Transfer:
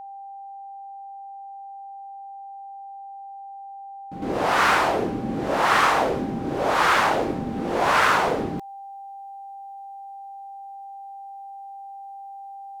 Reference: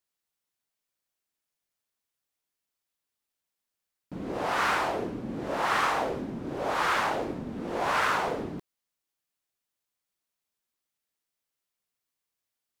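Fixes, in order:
notch filter 790 Hz, Q 30
level 0 dB, from 0:04.22 −7.5 dB

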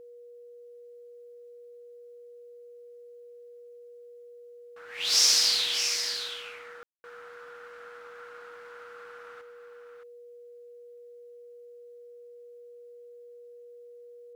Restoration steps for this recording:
notch filter 480 Hz, Q 30
ambience match 0:06.83–0:07.04
echo removal 620 ms −8 dB

